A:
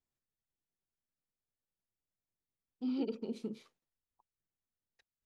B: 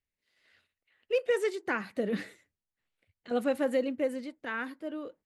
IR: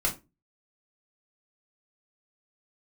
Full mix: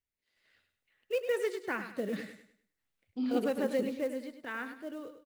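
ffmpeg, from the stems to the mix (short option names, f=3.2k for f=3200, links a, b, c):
-filter_complex "[0:a]adelay=350,volume=2.5dB[a];[1:a]acrusher=bits=6:mode=log:mix=0:aa=0.000001,volume=-4dB,asplit=2[b][c];[c]volume=-10dB,aecho=0:1:101|202|303|404|505:1|0.33|0.109|0.0359|0.0119[d];[a][b][d]amix=inputs=3:normalize=0"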